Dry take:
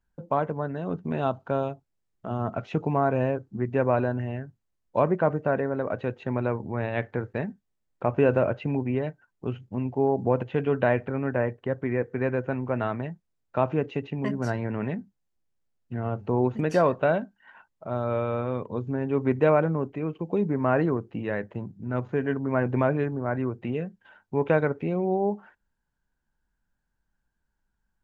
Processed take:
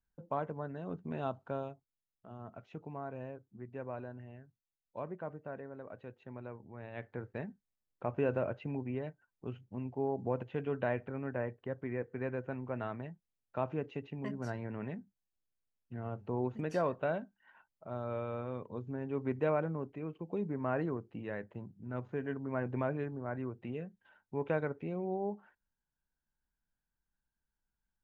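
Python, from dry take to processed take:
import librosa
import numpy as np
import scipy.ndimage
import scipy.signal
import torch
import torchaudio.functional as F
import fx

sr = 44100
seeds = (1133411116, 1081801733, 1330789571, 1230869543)

y = fx.gain(x, sr, db=fx.line((1.44, -10.5), (2.3, -19.0), (6.78, -19.0), (7.26, -11.0)))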